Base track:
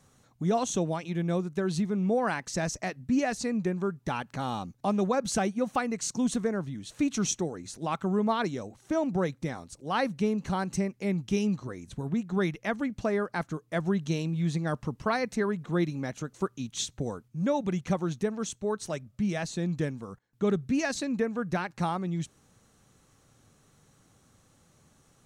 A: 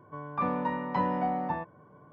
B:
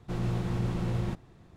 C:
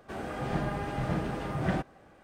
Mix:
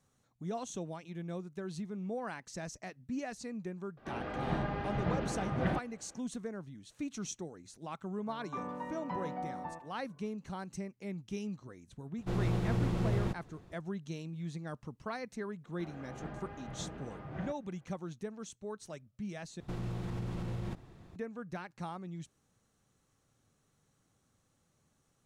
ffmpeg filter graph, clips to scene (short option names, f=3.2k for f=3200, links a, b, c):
-filter_complex "[3:a]asplit=2[a][b];[2:a]asplit=2[c][d];[0:a]volume=-12dB[e];[a]lowpass=f=4.5k:w=0.5412,lowpass=f=4.5k:w=1.3066[f];[1:a]asplit=2[g][h];[h]adelay=150,highpass=300,lowpass=3.4k,asoftclip=type=hard:threshold=-25.5dB,volume=-12dB[i];[g][i]amix=inputs=2:normalize=0[j];[c]equalizer=f=480:t=o:w=0.77:g=2.5[k];[b]lowpass=3.3k[l];[d]acompressor=threshold=-34dB:ratio=6:attack=3.2:release=140:knee=1:detection=peak[m];[e]asplit=2[n][o];[n]atrim=end=19.604[p];[m]atrim=end=1.56[q];[o]atrim=start=21.156[r];[f]atrim=end=2.23,asetpts=PTS-STARTPTS,volume=-3dB,afade=t=in:d=0.004:c=hsin,afade=t=out:st=2.226:d=0.004:c=hsin,adelay=175077S[s];[j]atrim=end=2.12,asetpts=PTS-STARTPTS,volume=-11dB,afade=t=in:d=0.004:c=hsin,afade=t=out:st=2.116:d=0.004:c=hsin,adelay=8150[t];[k]atrim=end=1.56,asetpts=PTS-STARTPTS,volume=-1.5dB,afade=t=in:d=0.004:c=hsin,afade=t=out:st=1.556:d=0.004:c=hsin,adelay=12180[u];[l]atrim=end=2.23,asetpts=PTS-STARTPTS,volume=-13dB,afade=t=in:d=0.004:c=hsin,afade=t=out:st=2.226:d=0.004:c=hsin,adelay=15700[v];[p][q]acrossfade=d=0.004:c1=hsin:c2=hsin[w];[w][r]acrossfade=d=0.004:c1=hsin:c2=hsin[x];[x][s][t][u][v]amix=inputs=5:normalize=0"